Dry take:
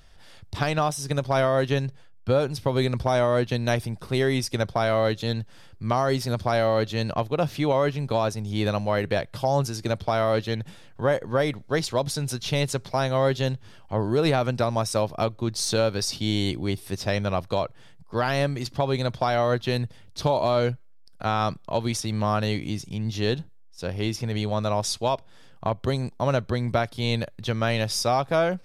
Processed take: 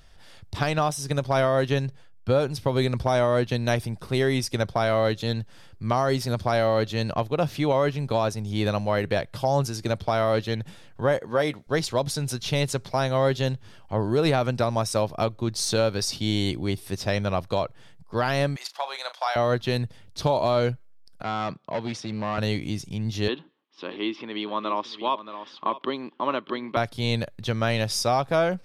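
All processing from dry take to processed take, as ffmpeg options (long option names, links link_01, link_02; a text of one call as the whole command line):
ffmpeg -i in.wav -filter_complex "[0:a]asettb=1/sr,asplit=3[link_01][link_02][link_03];[link_01]atrim=end=11.194[link_04];[link_02]atrim=start=11.19:end=11.67,asetpts=PTS-STARTPTS,afade=type=in:duration=0.004:curve=qsin,afade=type=out:start_time=0.476:duration=0.004:curve=qsin,highpass=frequency=220:poles=1,asplit=2[link_05][link_06];[link_06]adelay=13,volume=-12dB[link_07];[link_05][link_07]amix=inputs=2:normalize=0,atrim=end_sample=21168[link_08];[link_03]atrim=start=11.666[link_09];[link_04][link_08]acrossfade=duration=0.004:curve1=hsin:curve2=qsin[link_10];[link_10][link_09]acrossfade=duration=0.004:curve1=qsin:curve2=hsin,asettb=1/sr,asplit=3[link_11][link_12][link_13];[link_11]atrim=end=18.564[link_14];[link_12]atrim=start=18.56:end=19.36,asetpts=PTS-STARTPTS,afade=type=in:duration=0.004:curve=qsin,afade=type=out:start_time=0.796:duration=0.004:curve=qsin,highpass=frequency=740:width=0.5412,highpass=frequency=740:width=1.3066,asplit=2[link_15][link_16];[link_16]adelay=37,volume=-12dB[link_17];[link_15][link_17]amix=inputs=2:normalize=0,atrim=end_sample=35280[link_18];[link_13]atrim=start=19.356[link_19];[link_14][link_18]acrossfade=duration=0.004:curve1=hsin:curve2=qsin[link_20];[link_20][link_19]acrossfade=duration=0.004:curve1=qsin:curve2=hsin,asettb=1/sr,asplit=3[link_21][link_22][link_23];[link_21]atrim=end=21.234[link_24];[link_22]atrim=start=21.23:end=22.38,asetpts=PTS-STARTPTS,afade=type=in:duration=0.004:curve=qsin,afade=type=out:start_time=1.146:duration=0.004:curve=qsin,volume=23dB,asoftclip=hard,volume=-23dB,highpass=150,lowpass=3900[link_25];[link_23]atrim=start=22.376[link_26];[link_24][link_25]acrossfade=duration=0.004:curve1=hsin:curve2=qsin[link_27];[link_27][link_26]acrossfade=duration=0.004:curve1=qsin:curve2=hsin,asettb=1/sr,asplit=3[link_28][link_29][link_30];[link_28]atrim=end=23.284[link_31];[link_29]atrim=start=23.28:end=26.77,asetpts=PTS-STARTPTS,afade=type=in:duration=0.004:curve=qsin,afade=type=out:start_time=3.486:duration=0.004:curve=qsin,aecho=1:1:628:0.178,atrim=end_sample=153909,acompressor=mode=upward:threshold=-26dB:ratio=2.5:attack=3.2:release=140:knee=2.83:detection=peak,highpass=frequency=260:width=0.5412,highpass=frequency=260:width=1.3066,equalizer=frequency=310:width_type=q:width=4:gain=5,equalizer=frequency=480:width_type=q:width=4:gain=-7,equalizer=frequency=700:width_type=q:width=4:gain=-8,equalizer=frequency=1100:width_type=q:width=4:gain=9,equalizer=frequency=1500:width_type=q:width=4:gain=-4,equalizer=frequency=3200:width_type=q:width=4:gain=6,lowpass=frequency=3400:width=0.5412,lowpass=frequency=3400:width=1.3066[link_32];[link_30]atrim=start=26.766[link_33];[link_31][link_32]acrossfade=duration=0.004:curve1=hsin:curve2=qsin[link_34];[link_34][link_33]acrossfade=duration=0.004:curve1=qsin:curve2=hsin" out.wav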